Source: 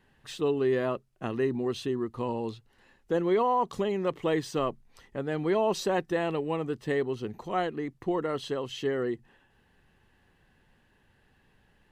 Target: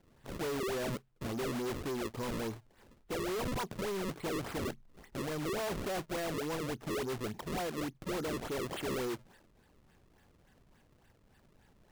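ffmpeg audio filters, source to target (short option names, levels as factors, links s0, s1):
-af "acrusher=samples=33:mix=1:aa=0.000001:lfo=1:lforange=52.8:lforate=3.5,volume=50.1,asoftclip=hard,volume=0.02"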